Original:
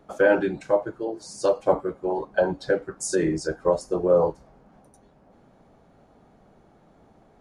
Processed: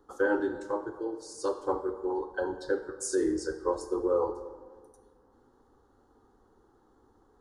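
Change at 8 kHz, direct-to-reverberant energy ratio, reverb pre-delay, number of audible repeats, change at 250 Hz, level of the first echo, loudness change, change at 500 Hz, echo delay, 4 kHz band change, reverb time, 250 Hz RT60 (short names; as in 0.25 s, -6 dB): -5.0 dB, 9.5 dB, 29 ms, none, -4.5 dB, none, -7.0 dB, -8.0 dB, none, -7.0 dB, 1.6 s, 1.7 s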